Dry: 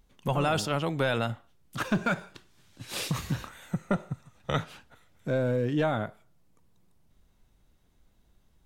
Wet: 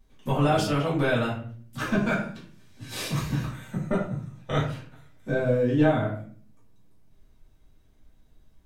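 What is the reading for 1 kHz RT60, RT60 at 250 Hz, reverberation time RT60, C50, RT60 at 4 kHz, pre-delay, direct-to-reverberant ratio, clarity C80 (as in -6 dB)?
0.40 s, 0.75 s, 0.45 s, 6.0 dB, 0.30 s, 3 ms, -9.0 dB, 9.5 dB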